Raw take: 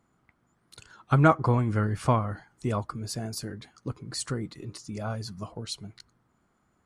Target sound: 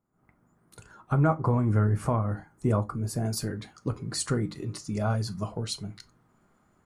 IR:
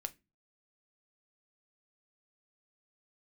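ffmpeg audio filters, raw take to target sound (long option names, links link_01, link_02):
-filter_complex "[0:a]asetnsamples=nb_out_samples=441:pad=0,asendcmd='3.25 equalizer g -3.5',equalizer=frequency=3800:width=0.68:gain=-14.5,alimiter=limit=-19.5dB:level=0:latency=1:release=280,dynaudnorm=framelen=120:gausssize=3:maxgain=15.5dB[link_01];[1:a]atrim=start_sample=2205,atrim=end_sample=4410[link_02];[link_01][link_02]afir=irnorm=-1:irlink=0,volume=-8.5dB"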